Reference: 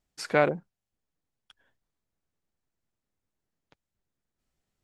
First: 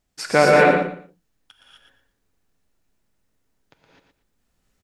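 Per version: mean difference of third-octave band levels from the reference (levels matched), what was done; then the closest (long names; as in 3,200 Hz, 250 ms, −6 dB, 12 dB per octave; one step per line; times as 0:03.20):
9.0 dB: on a send: repeating echo 117 ms, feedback 22%, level −7 dB
on the sum: reverb whose tail is shaped and stops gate 280 ms rising, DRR −4.5 dB
level +6 dB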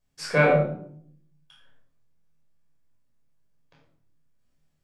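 6.5 dB: on a send: flutter between parallel walls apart 4.4 metres, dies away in 0.24 s
on the sum: rectangular room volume 960 cubic metres, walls furnished, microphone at 5.5 metres
level −4 dB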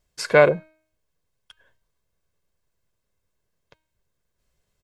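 2.0 dB: comb filter 1.9 ms, depth 51%
hum removal 313.9 Hz, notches 14
level +6.5 dB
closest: third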